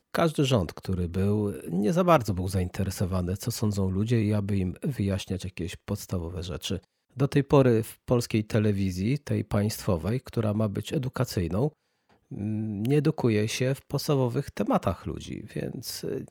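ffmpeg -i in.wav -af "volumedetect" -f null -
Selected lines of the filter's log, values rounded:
mean_volume: -27.0 dB
max_volume: -6.8 dB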